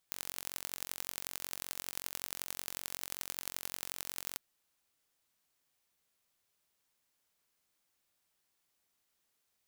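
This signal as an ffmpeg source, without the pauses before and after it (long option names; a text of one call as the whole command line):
ffmpeg -f lavfi -i "aevalsrc='0.335*eq(mod(n,974),0)*(0.5+0.5*eq(mod(n,3896),0))':duration=4.26:sample_rate=44100" out.wav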